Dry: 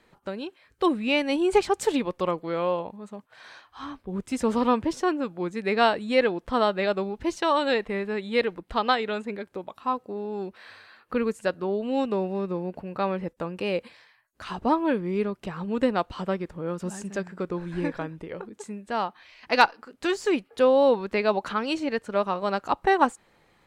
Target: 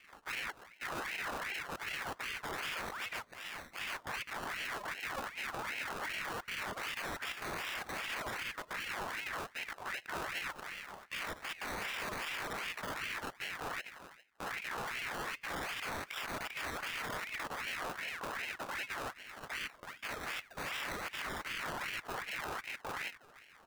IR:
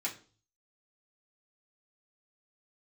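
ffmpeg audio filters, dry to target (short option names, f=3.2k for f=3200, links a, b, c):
-filter_complex "[0:a]asettb=1/sr,asplit=3[a][b][c];[a]atrim=end=13.094[d];[b]atrim=start=13.09:end=14.58,asetpts=PTS-STARTPTS,afade=t=in:d=0.004:c=qsin,afade=t=out:st=1.486:d=0.004:c=qsin,highpass=f=220:w=0.5412,highpass=f=220:w=1.3066[e];[c]atrim=start=14.576[f];[d][e]acrossfade=d=0.004:c1=hsin:c2=qsin[g];[g][f]acrossfade=d=0.004:c1=qsin:c2=hsin,acompressor=threshold=-32dB:ratio=6,asplit=2[h][i];[i]adelay=340,highpass=300,lowpass=3.4k,asoftclip=type=hard:threshold=-29.5dB,volume=-29dB[j];[h][j]amix=inputs=2:normalize=0,flanger=delay=18:depth=3.3:speed=0.14,acrusher=samples=30:mix=1:aa=0.000001:lfo=1:lforange=18:lforate=0.23,aeval=exprs='(mod(106*val(0)+1,2)-1)/106':c=same,asplit=2[k][l];[1:a]atrim=start_sample=2205[m];[l][m]afir=irnorm=-1:irlink=0,volume=-21dB[n];[k][n]amix=inputs=2:normalize=0,aeval=exprs='val(0)*sin(2*PI*1600*n/s+1600*0.5/2.6*sin(2*PI*2.6*n/s))':c=same,volume=8dB"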